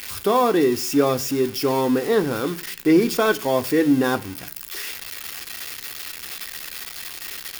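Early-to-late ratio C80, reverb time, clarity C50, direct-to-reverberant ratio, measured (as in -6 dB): 25.0 dB, 0.50 s, 21.0 dB, 9.0 dB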